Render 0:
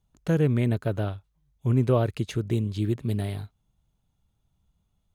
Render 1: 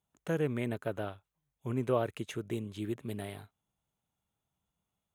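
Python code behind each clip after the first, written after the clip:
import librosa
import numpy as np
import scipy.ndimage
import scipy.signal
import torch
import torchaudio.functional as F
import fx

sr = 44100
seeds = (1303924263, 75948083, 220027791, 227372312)

y = fx.highpass(x, sr, hz=440.0, slope=6)
y = fx.peak_eq(y, sr, hz=4600.0, db=-10.0, octaves=0.56)
y = F.gain(torch.from_numpy(y), -3.0).numpy()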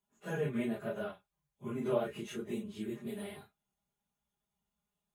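y = fx.phase_scramble(x, sr, seeds[0], window_ms=100)
y = y + 0.83 * np.pad(y, (int(4.9 * sr / 1000.0), 0))[:len(y)]
y = F.gain(torch.from_numpy(y), -4.5).numpy()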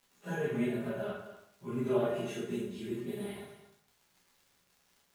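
y = fx.dmg_crackle(x, sr, seeds[1], per_s=160.0, level_db=-51.0)
y = y + 10.0 ** (-13.5 / 20.0) * np.pad(y, (int(230 * sr / 1000.0), 0))[:len(y)]
y = fx.rev_plate(y, sr, seeds[2], rt60_s=0.68, hf_ratio=0.85, predelay_ms=0, drr_db=-4.5)
y = F.gain(torch.from_numpy(y), -4.0).numpy()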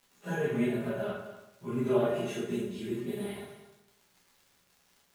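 y = fx.echo_feedback(x, sr, ms=187, feedback_pct=49, wet_db=-22.0)
y = F.gain(torch.from_numpy(y), 3.0).numpy()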